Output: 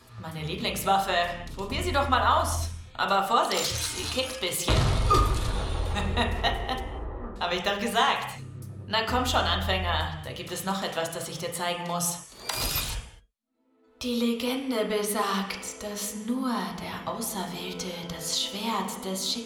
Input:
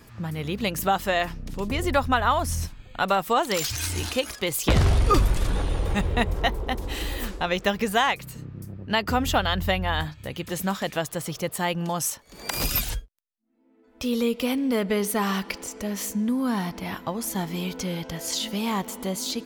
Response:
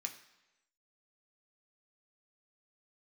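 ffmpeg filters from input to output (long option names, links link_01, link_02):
-filter_complex "[0:a]asettb=1/sr,asplit=3[link_01][link_02][link_03];[link_01]atrim=end=6.804[link_04];[link_02]atrim=start=6.8:end=7.36,asetpts=PTS-STARTPTS,afade=type=in:duration=0.004:curve=qsin,afade=type=out:start_time=0.556:duration=0.004:curve=qsin,lowpass=frequency=1200:width=0.5412,lowpass=frequency=1200:width=1.3066[link_05];[link_03]atrim=start=7.356[link_06];[link_04][link_05]acrossfade=duration=0.004:curve1=hsin:curve2=qsin[link_07];[link_07][link_06]acrossfade=duration=0.004:curve1=qsin:curve2=hsin[link_08];[1:a]atrim=start_sample=2205,atrim=end_sample=6174,asetrate=23373,aresample=44100[link_09];[link_08][link_09]afir=irnorm=-1:irlink=0,volume=-3dB"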